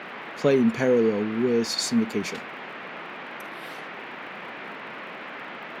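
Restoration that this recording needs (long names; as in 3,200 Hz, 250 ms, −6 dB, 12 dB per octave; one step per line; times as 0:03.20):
click removal
noise reduction from a noise print 30 dB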